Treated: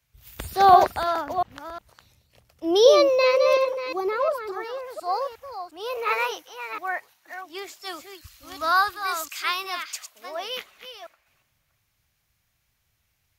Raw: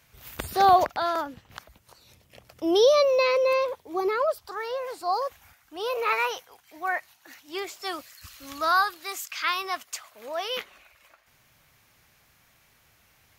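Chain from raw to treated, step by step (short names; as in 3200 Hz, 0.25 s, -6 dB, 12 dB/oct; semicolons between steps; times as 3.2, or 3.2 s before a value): reverse delay 0.357 s, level -6.5 dB; three-band expander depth 40%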